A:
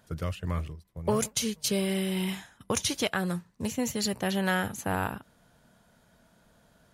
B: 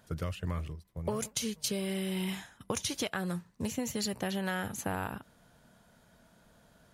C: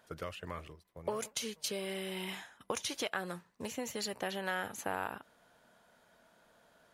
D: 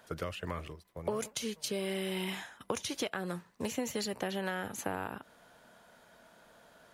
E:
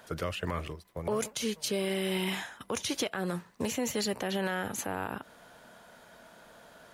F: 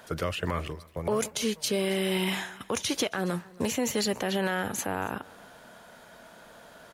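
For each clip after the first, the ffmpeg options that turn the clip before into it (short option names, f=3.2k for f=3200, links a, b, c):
-af "acompressor=threshold=-30dB:ratio=6"
-af "bass=f=250:g=-15,treble=f=4k:g=-5"
-filter_complex "[0:a]acrossover=split=400[a][b];[b]acompressor=threshold=-44dB:ratio=2.5[c];[a][c]amix=inputs=2:normalize=0,volume=6dB"
-af "alimiter=level_in=3dB:limit=-24dB:level=0:latency=1:release=40,volume=-3dB,volume=5.5dB"
-af "aecho=1:1:275:0.075,volume=3.5dB"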